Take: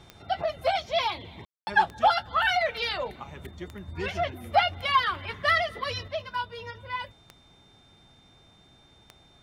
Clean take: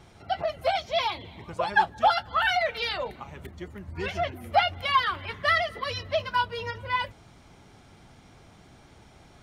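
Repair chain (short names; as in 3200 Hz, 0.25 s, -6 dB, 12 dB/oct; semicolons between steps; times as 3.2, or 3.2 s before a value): de-click; notch 3600 Hz, Q 30; room tone fill 1.45–1.67; gain correction +6 dB, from 6.08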